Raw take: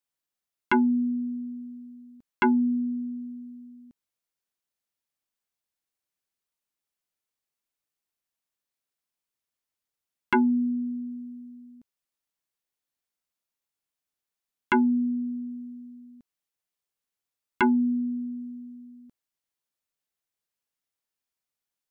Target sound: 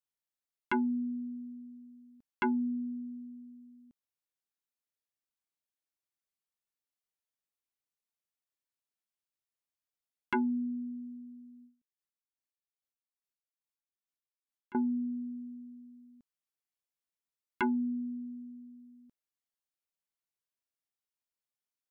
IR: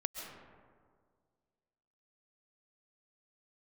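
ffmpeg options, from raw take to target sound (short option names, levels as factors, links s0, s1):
-filter_complex "[0:a]asettb=1/sr,asplit=3[s0][s1][s2];[s0]atrim=end=11.624[s3];[s1]atrim=start=11.62:end=14.75,asetpts=PTS-STARTPTS,afade=t=in:d=0.004:c=qsin,afade=t=out:st=3.126:d=0.004:c=qsin,aeval=exprs='val(0)*pow(10,-24*(0.5-0.5*cos(2*PI*2.4*n/s))/20)':c=same[s4];[s2]atrim=start=14.746[s5];[s3][s4]acrossfade=d=0.004:c1=hsin:c2=qsin[s6];[s6][s5]acrossfade=d=0.004:c1=qsin:c2=hsin,volume=0.376"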